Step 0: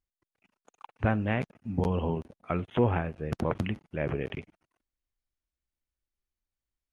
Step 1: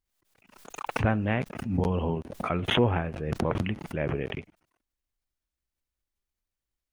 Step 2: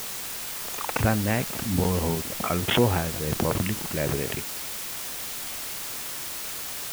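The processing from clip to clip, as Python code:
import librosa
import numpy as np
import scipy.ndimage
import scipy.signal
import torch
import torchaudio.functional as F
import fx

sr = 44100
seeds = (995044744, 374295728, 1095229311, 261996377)

y1 = fx.pre_swell(x, sr, db_per_s=66.0)
y1 = y1 * librosa.db_to_amplitude(1.0)
y2 = fx.quant_dither(y1, sr, seeds[0], bits=6, dither='triangular')
y2 = y2 * librosa.db_to_amplitude(2.0)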